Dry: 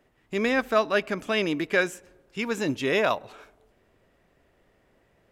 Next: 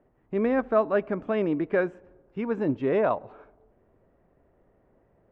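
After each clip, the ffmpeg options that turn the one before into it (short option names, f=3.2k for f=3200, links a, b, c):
-af "lowpass=1k,volume=1.5dB"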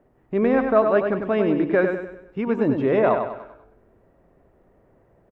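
-af "aecho=1:1:98|196|294|392|490:0.501|0.216|0.0927|0.0398|0.0171,volume=4.5dB"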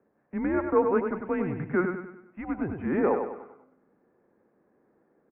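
-af "highpass=f=410:t=q:w=0.5412,highpass=f=410:t=q:w=1.307,lowpass=f=2.5k:t=q:w=0.5176,lowpass=f=2.5k:t=q:w=0.7071,lowpass=f=2.5k:t=q:w=1.932,afreqshift=-180,volume=-4.5dB"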